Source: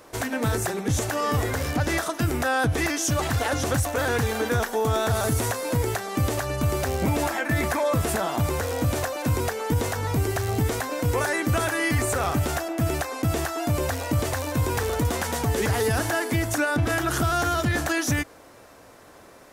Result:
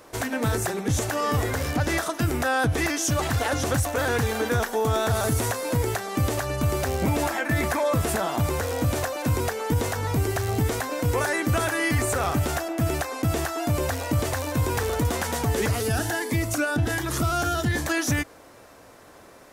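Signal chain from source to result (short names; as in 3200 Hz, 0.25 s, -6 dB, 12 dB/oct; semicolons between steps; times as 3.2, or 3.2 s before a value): 15.68–17.88 cascading phaser rising 1.3 Hz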